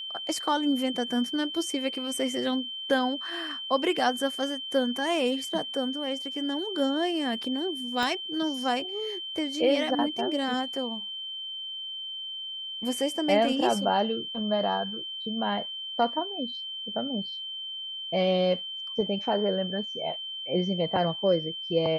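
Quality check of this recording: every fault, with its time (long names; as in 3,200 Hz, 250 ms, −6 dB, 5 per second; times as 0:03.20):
whistle 3,100 Hz −34 dBFS
0:08.03: click −16 dBFS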